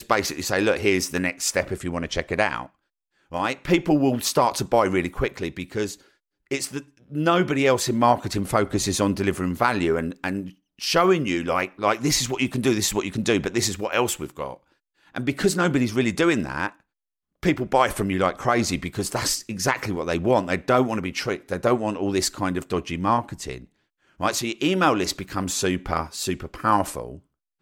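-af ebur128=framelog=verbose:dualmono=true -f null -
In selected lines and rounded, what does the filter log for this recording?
Integrated loudness:
  I:         -20.4 LUFS
  Threshold: -30.8 LUFS
Loudness range:
  LRA:         2.7 LU
  Threshold: -40.9 LUFS
  LRA low:   -22.2 LUFS
  LRA high:  -19.5 LUFS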